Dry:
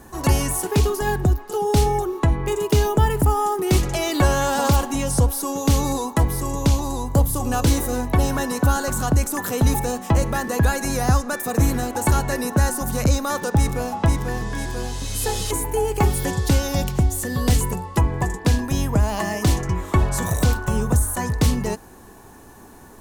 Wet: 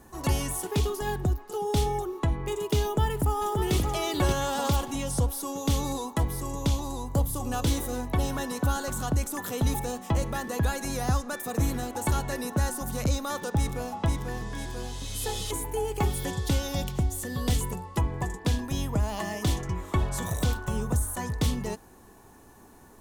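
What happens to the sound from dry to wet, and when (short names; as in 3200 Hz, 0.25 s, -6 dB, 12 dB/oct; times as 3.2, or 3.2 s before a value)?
2.83–3.74 echo throw 0.58 s, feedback 15%, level -4.5 dB
whole clip: notch 1600 Hz, Q 18; dynamic EQ 3400 Hz, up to +7 dB, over -50 dBFS, Q 4.5; gain -8 dB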